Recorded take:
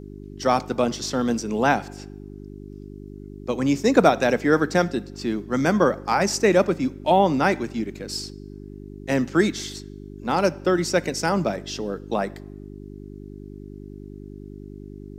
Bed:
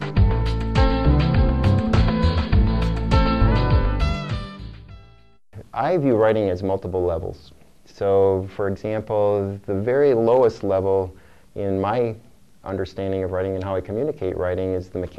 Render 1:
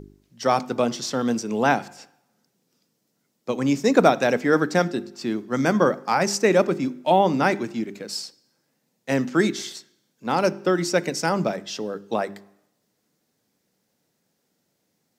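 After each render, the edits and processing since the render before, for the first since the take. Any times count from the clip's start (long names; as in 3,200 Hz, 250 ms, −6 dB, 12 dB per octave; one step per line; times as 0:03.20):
hum removal 50 Hz, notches 8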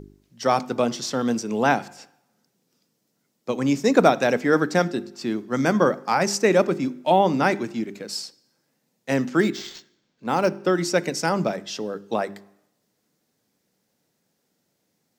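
0:09.40–0:10.64: linearly interpolated sample-rate reduction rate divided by 4×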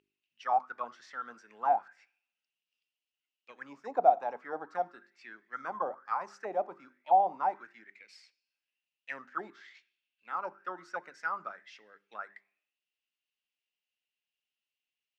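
envelope filter 730–2,800 Hz, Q 9.8, down, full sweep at −14 dBFS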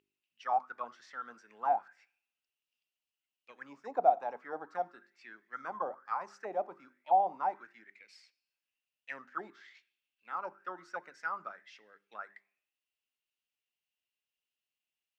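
level −2.5 dB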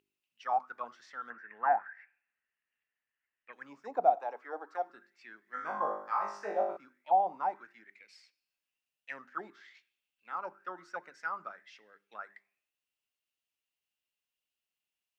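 0:01.30–0:03.53: low-pass with resonance 1,800 Hz, resonance Q 9.1
0:04.15–0:04.90: high-pass filter 300 Hz 24 dB per octave
0:05.45–0:06.77: flutter between parallel walls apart 3.4 metres, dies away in 0.53 s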